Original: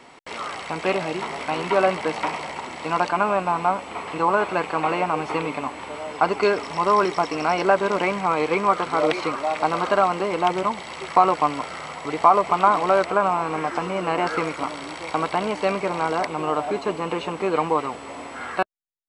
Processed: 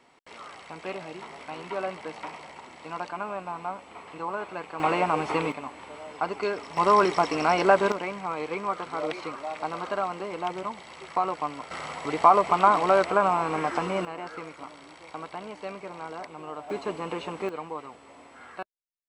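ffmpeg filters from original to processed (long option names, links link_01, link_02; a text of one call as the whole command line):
ffmpeg -i in.wav -af "asetnsamples=nb_out_samples=441:pad=0,asendcmd='4.8 volume volume -1.5dB;5.52 volume volume -9dB;6.77 volume volume -1dB;7.92 volume volume -10dB;11.71 volume volume -2dB;14.05 volume volume -14.5dB;16.7 volume volume -6.5dB;17.49 volume volume -14.5dB',volume=-12.5dB" out.wav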